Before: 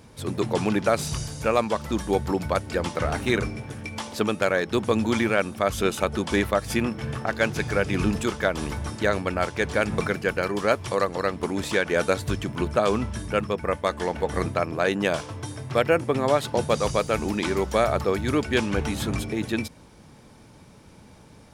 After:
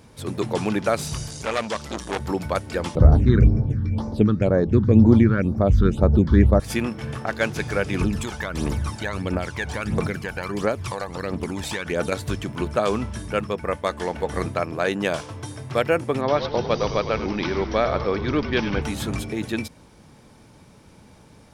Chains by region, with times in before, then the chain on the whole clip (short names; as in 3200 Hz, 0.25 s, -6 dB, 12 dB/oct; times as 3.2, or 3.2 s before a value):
1.3–2.2 LPF 7800 Hz + high shelf 3100 Hz +11 dB + core saturation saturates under 2100 Hz
2.95–6.6 tilt -4.5 dB/oct + phaser stages 6, 2 Hz, lowest notch 640–3000 Hz
8.01–12.12 compressor 3:1, threshold -24 dBFS + phaser 1.5 Hz, delay 1.4 ms, feedback 58%
16.21–18.82 steep low-pass 5900 Hz 96 dB/oct + frequency-shifting echo 0.101 s, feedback 60%, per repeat -64 Hz, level -10.5 dB
whole clip: dry